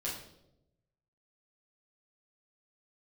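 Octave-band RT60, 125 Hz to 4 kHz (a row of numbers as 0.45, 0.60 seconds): 1.4, 1.1, 1.0, 0.65, 0.55, 0.65 seconds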